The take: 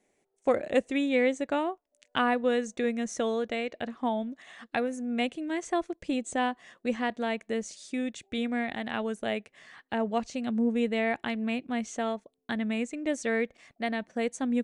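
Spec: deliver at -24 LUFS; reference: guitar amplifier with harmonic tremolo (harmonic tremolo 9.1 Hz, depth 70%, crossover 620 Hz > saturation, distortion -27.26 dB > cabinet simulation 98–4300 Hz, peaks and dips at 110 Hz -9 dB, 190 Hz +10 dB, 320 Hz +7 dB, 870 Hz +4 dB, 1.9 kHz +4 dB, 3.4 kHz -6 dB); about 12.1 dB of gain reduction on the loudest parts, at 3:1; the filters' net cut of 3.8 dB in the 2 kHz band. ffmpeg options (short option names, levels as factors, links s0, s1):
-filter_complex "[0:a]equalizer=f=2000:t=o:g=-7,acompressor=threshold=0.0158:ratio=3,acrossover=split=620[s0][s1];[s0]aeval=exprs='val(0)*(1-0.7/2+0.7/2*cos(2*PI*9.1*n/s))':c=same[s2];[s1]aeval=exprs='val(0)*(1-0.7/2-0.7/2*cos(2*PI*9.1*n/s))':c=same[s3];[s2][s3]amix=inputs=2:normalize=0,asoftclip=threshold=0.0473,highpass=98,equalizer=f=110:t=q:w=4:g=-9,equalizer=f=190:t=q:w=4:g=10,equalizer=f=320:t=q:w=4:g=7,equalizer=f=870:t=q:w=4:g=4,equalizer=f=1900:t=q:w=4:g=4,equalizer=f=3400:t=q:w=4:g=-6,lowpass=f=4300:w=0.5412,lowpass=f=4300:w=1.3066,volume=6.31"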